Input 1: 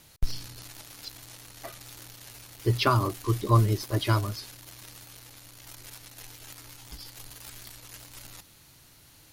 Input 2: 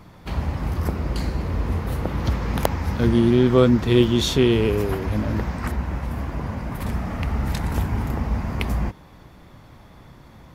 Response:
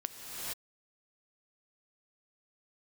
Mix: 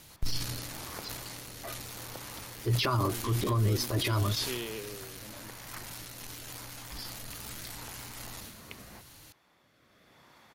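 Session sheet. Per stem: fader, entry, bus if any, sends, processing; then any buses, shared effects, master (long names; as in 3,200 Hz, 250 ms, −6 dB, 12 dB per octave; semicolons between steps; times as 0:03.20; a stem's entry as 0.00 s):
+2.0 dB, 0.00 s, no send, transient designer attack −6 dB, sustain +8 dB
−2.0 dB, 0.10 s, no send, high-pass filter 1,100 Hz 6 dB per octave; rotating-speaker cabinet horn 0.85 Hz; automatic ducking −8 dB, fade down 1.90 s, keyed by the first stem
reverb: not used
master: brickwall limiter −20 dBFS, peak gain reduction 10.5 dB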